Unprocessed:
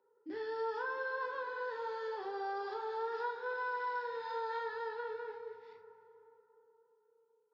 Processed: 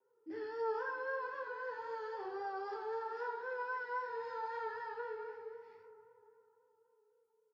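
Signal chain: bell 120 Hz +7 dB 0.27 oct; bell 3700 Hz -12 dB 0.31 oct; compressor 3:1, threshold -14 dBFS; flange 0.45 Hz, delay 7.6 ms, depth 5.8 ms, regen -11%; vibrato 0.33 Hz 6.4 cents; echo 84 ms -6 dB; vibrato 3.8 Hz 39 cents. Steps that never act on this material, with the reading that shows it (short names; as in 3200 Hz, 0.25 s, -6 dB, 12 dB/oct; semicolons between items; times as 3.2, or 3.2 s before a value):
compressor, threshold -14 dBFS: input peak -27.0 dBFS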